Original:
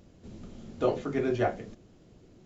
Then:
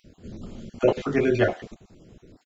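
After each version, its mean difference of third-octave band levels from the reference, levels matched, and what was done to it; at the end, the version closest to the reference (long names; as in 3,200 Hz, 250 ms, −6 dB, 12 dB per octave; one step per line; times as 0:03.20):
2.5 dB: time-frequency cells dropped at random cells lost 30%
dynamic equaliser 2,700 Hz, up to +5 dB, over −49 dBFS, Q 0.7
far-end echo of a speakerphone 90 ms, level −23 dB
level +6.5 dB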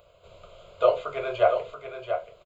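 8.5 dB: low shelf with overshoot 450 Hz −13 dB, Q 3
phaser with its sweep stopped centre 1,200 Hz, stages 8
on a send: single-tap delay 682 ms −8 dB
on the sum: level +7.5 dB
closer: first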